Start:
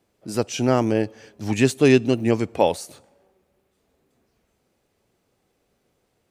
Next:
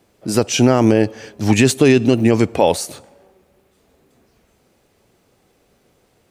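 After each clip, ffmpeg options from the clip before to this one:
ffmpeg -i in.wav -af "alimiter=level_in=11.5dB:limit=-1dB:release=50:level=0:latency=1,volume=-1dB" out.wav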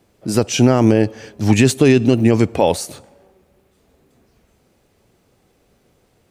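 ffmpeg -i in.wav -af "lowshelf=frequency=200:gain=5,volume=-1.5dB" out.wav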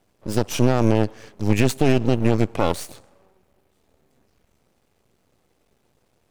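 ffmpeg -i in.wav -af "aeval=exprs='max(val(0),0)':channel_layout=same,volume=-3dB" out.wav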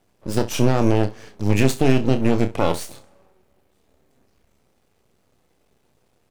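ffmpeg -i in.wav -af "aecho=1:1:30|65:0.376|0.141" out.wav

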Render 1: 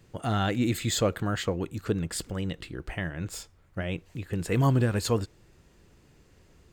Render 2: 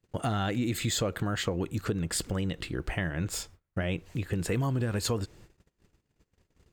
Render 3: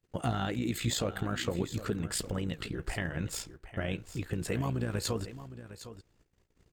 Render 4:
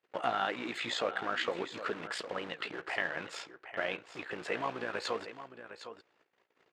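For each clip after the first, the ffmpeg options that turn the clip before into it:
ffmpeg -i in.wav -filter_complex "[0:a]agate=range=-28dB:threshold=-54dB:ratio=16:detection=peak,asplit=2[link_01][link_02];[link_02]alimiter=limit=-23dB:level=0:latency=1,volume=-3dB[link_03];[link_01][link_03]amix=inputs=2:normalize=0,acompressor=threshold=-26dB:ratio=6" out.wav
ffmpeg -i in.wav -af "flanger=delay=1.2:depth=7.4:regen=66:speed=1.7:shape=triangular,aecho=1:1:759:0.211,tremolo=f=58:d=0.571,volume=4dB" out.wav
ffmpeg -i in.wav -filter_complex "[0:a]asplit=2[link_01][link_02];[link_02]aeval=exprs='(mod(63.1*val(0)+1,2)-1)/63.1':channel_layout=same,volume=-11dB[link_03];[link_01][link_03]amix=inputs=2:normalize=0,highpass=600,lowpass=2800,volume=5.5dB" out.wav

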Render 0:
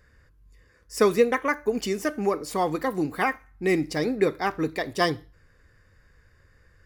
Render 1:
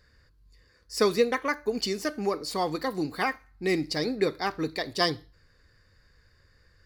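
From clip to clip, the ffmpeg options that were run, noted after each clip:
ffmpeg -i in.wav -af "equalizer=frequency=4400:width_type=o:width=0.5:gain=13.5,volume=-3.5dB" out.wav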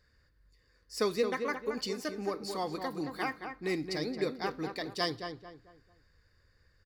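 ffmpeg -i in.wav -filter_complex "[0:a]asplit=2[link_01][link_02];[link_02]adelay=222,lowpass=frequency=2300:poles=1,volume=-6.5dB,asplit=2[link_03][link_04];[link_04]adelay=222,lowpass=frequency=2300:poles=1,volume=0.35,asplit=2[link_05][link_06];[link_06]adelay=222,lowpass=frequency=2300:poles=1,volume=0.35,asplit=2[link_07][link_08];[link_08]adelay=222,lowpass=frequency=2300:poles=1,volume=0.35[link_09];[link_01][link_03][link_05][link_07][link_09]amix=inputs=5:normalize=0,volume=-7dB" out.wav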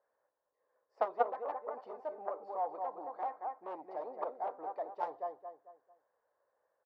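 ffmpeg -i in.wav -af "aeval=exprs='0.133*(cos(1*acos(clip(val(0)/0.133,-1,1)))-cos(1*PI/2))+0.0596*(cos(3*acos(clip(val(0)/0.133,-1,1)))-cos(3*PI/2))':channel_layout=same,asuperpass=centerf=730:order=4:qfactor=2,volume=16dB" out.wav

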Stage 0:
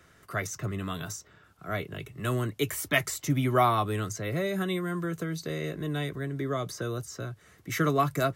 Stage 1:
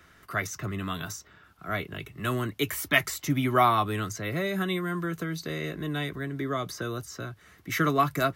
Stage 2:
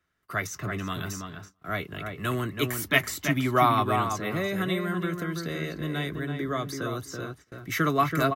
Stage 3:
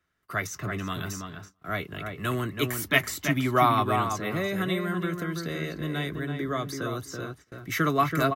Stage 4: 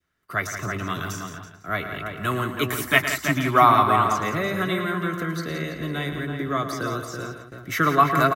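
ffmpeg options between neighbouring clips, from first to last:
ffmpeg -i in.wav -af "equalizer=frequency=125:width_type=o:width=1:gain=-6,equalizer=frequency=500:width_type=o:width=1:gain=-6,equalizer=frequency=8000:width_type=o:width=1:gain=-6,volume=4dB" out.wav
ffmpeg -i in.wav -filter_complex "[0:a]asplit=2[link_01][link_02];[link_02]adelay=330,lowpass=frequency=2100:poles=1,volume=-5dB,asplit=2[link_03][link_04];[link_04]adelay=330,lowpass=frequency=2100:poles=1,volume=0.16,asplit=2[link_05][link_06];[link_06]adelay=330,lowpass=frequency=2100:poles=1,volume=0.16[link_07];[link_03][link_05][link_07]amix=inputs=3:normalize=0[link_08];[link_01][link_08]amix=inputs=2:normalize=0,agate=range=-21dB:threshold=-46dB:ratio=16:detection=peak" out.wav
ffmpeg -i in.wav -af anull out.wav
ffmpeg -i in.wav -filter_complex "[0:a]adynamicequalizer=threshold=0.0141:dfrequency=1200:dqfactor=1:tfrequency=1200:tqfactor=1:attack=5:release=100:ratio=0.375:range=3:mode=boostabove:tftype=bell,asplit=2[link_01][link_02];[link_02]aecho=0:1:110.8|172:0.282|0.316[link_03];[link_01][link_03]amix=inputs=2:normalize=0,volume=1.5dB" out.wav

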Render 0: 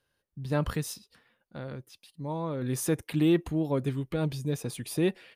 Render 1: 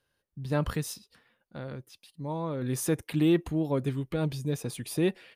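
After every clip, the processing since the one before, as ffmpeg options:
ffmpeg -i in.wav -af anull out.wav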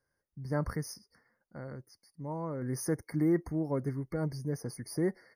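ffmpeg -i in.wav -af "afftfilt=real='re*eq(mod(floor(b*sr/1024/2200),2),0)':imag='im*eq(mod(floor(b*sr/1024/2200),2),0)':win_size=1024:overlap=0.75,volume=-4dB" out.wav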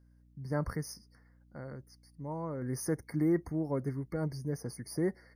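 ffmpeg -i in.wav -af "aeval=exprs='val(0)+0.001*(sin(2*PI*60*n/s)+sin(2*PI*2*60*n/s)/2+sin(2*PI*3*60*n/s)/3+sin(2*PI*4*60*n/s)/4+sin(2*PI*5*60*n/s)/5)':channel_layout=same,volume=-1dB" out.wav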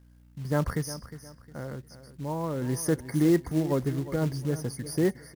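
ffmpeg -i in.wav -af "aecho=1:1:358|716|1074:0.2|0.0638|0.0204,acrusher=bits=5:mode=log:mix=0:aa=0.000001,volume=6.5dB" out.wav

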